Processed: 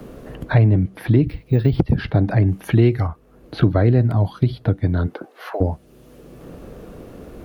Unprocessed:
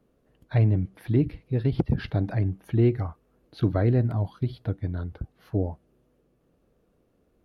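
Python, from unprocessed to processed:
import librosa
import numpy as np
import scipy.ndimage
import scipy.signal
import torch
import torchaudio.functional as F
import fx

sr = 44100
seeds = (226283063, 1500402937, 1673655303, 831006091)

y = fx.resample_bad(x, sr, factor=2, down='none', up='hold', at=(1.28, 1.79))
y = fx.high_shelf(y, sr, hz=2000.0, db=10.5, at=(2.47, 3.06), fade=0.02)
y = fx.highpass(y, sr, hz=fx.line((5.06, 210.0), (5.6, 780.0)), slope=24, at=(5.06, 5.6), fade=0.02)
y = fx.band_squash(y, sr, depth_pct=70)
y = F.gain(torch.from_numpy(y), 8.0).numpy()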